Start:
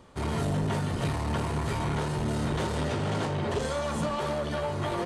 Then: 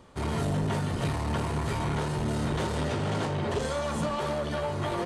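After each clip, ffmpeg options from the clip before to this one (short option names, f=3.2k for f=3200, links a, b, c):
-af anull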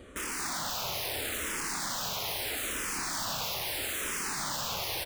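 -filter_complex "[0:a]aeval=exprs='(mod(56.2*val(0)+1,2)-1)/56.2':c=same,aecho=1:1:231:0.631,asplit=2[a][b];[b]afreqshift=-0.77[c];[a][c]amix=inputs=2:normalize=1,volume=7dB"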